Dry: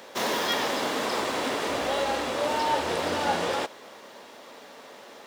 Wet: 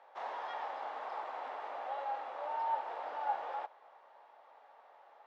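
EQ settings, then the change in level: ladder band-pass 930 Hz, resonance 55%; notch 1000 Hz, Q 17; -2.5 dB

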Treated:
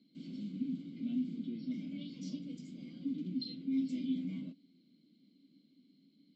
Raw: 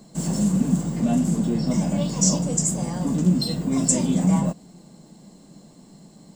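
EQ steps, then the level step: vowel filter i; Butterworth band-stop 1800 Hz, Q 4.1; ladder low-pass 4700 Hz, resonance 65%; +2.5 dB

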